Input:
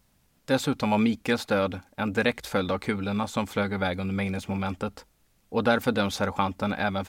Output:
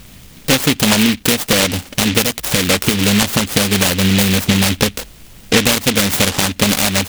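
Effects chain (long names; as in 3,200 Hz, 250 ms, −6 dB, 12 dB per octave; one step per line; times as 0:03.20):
dynamic equaliser 2,000 Hz, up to +4 dB, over −41 dBFS, Q 0.85
downward compressor 10 to 1, threshold −37 dBFS, peak gain reduction 21.5 dB
boost into a limiter +27 dB
short delay modulated by noise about 2,700 Hz, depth 0.3 ms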